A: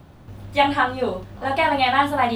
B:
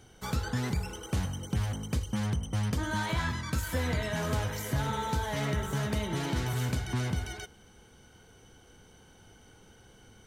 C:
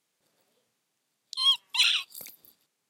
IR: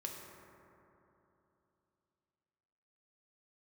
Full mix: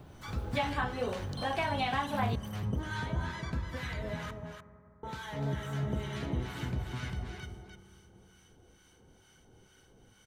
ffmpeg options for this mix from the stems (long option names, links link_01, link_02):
-filter_complex "[0:a]volume=-6dB,asplit=2[link_01][link_02];[link_02]volume=-20.5dB[link_03];[1:a]acrossover=split=4400[link_04][link_05];[link_05]acompressor=threshold=-56dB:ratio=4:attack=1:release=60[link_06];[link_04][link_06]amix=inputs=2:normalize=0,acrossover=split=910[link_07][link_08];[link_07]aeval=exprs='val(0)*(1-1/2+1/2*cos(2*PI*2.2*n/s))':channel_layout=same[link_09];[link_08]aeval=exprs='val(0)*(1-1/2-1/2*cos(2*PI*2.2*n/s))':channel_layout=same[link_10];[link_09][link_10]amix=inputs=2:normalize=0,volume=-4.5dB,asplit=3[link_11][link_12][link_13];[link_11]atrim=end=4.31,asetpts=PTS-STARTPTS,afade=type=out:start_time=4.306:duration=0.004:curve=hsin[link_14];[link_12]atrim=start=4.31:end=5.03,asetpts=PTS-STARTPTS,volume=0[link_15];[link_13]atrim=start=5.03,asetpts=PTS-STARTPTS,afade=type=in:duration=0.004:curve=hsin[link_16];[link_14][link_15][link_16]concat=n=3:v=0:a=1,asplit=3[link_17][link_18][link_19];[link_18]volume=-3.5dB[link_20];[link_19]volume=-3.5dB[link_21];[2:a]acompressor=threshold=-32dB:ratio=6,volume=-11dB,asplit=2[link_22][link_23];[link_23]volume=-7dB[link_24];[link_01][link_22]amix=inputs=2:normalize=0,acompressor=threshold=-31dB:ratio=6,volume=0dB[link_25];[3:a]atrim=start_sample=2205[link_26];[link_03][link_20]amix=inputs=2:normalize=0[link_27];[link_27][link_26]afir=irnorm=-1:irlink=0[link_28];[link_21][link_24]amix=inputs=2:normalize=0,aecho=0:1:297:1[link_29];[link_17][link_25][link_28][link_29]amix=inputs=4:normalize=0"